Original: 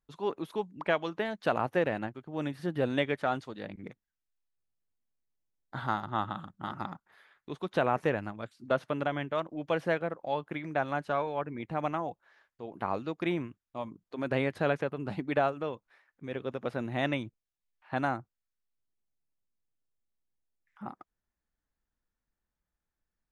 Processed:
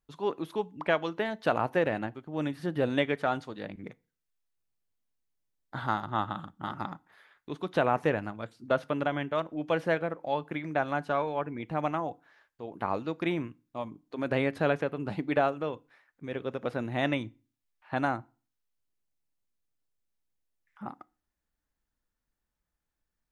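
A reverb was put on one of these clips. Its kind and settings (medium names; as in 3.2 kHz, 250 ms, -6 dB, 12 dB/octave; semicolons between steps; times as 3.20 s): FDN reverb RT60 0.36 s, low-frequency decay 1.2×, high-frequency decay 0.9×, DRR 18.5 dB; trim +1.5 dB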